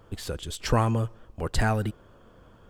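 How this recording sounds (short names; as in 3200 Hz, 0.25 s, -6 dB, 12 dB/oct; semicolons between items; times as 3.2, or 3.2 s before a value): noise floor -55 dBFS; spectral tilt -5.5 dB/oct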